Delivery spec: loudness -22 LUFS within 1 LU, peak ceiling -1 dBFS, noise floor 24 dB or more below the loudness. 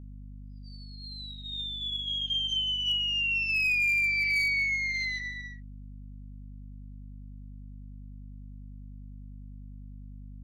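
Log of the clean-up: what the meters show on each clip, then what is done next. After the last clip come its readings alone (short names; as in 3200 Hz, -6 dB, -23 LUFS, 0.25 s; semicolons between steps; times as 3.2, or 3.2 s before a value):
clipped 0.3%; flat tops at -22.5 dBFS; hum 50 Hz; harmonics up to 250 Hz; hum level -42 dBFS; loudness -26.5 LUFS; peak -22.5 dBFS; loudness target -22.0 LUFS
-> clip repair -22.5 dBFS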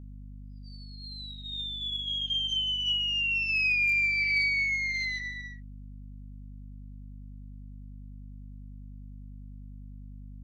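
clipped 0.0%; hum 50 Hz; harmonics up to 250 Hz; hum level -41 dBFS
-> de-hum 50 Hz, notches 5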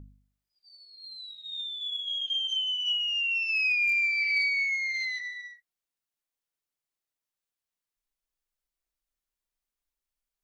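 hum none; loudness -26.0 LUFS; peak -18.5 dBFS; loudness target -22.0 LUFS
-> gain +4 dB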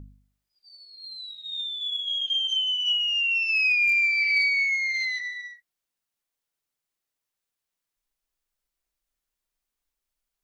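loudness -22.0 LUFS; peak -14.5 dBFS; noise floor -86 dBFS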